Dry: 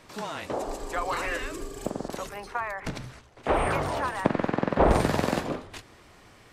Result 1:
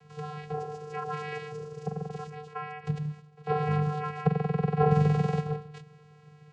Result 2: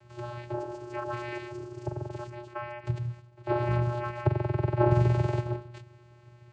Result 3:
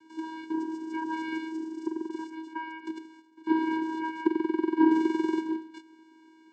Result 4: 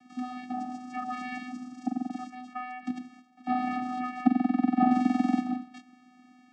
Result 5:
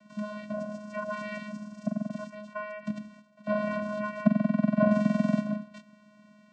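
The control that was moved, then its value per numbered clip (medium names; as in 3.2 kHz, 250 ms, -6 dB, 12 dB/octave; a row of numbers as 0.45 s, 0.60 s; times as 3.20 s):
vocoder, frequency: 150 Hz, 120 Hz, 320 Hz, 250 Hz, 210 Hz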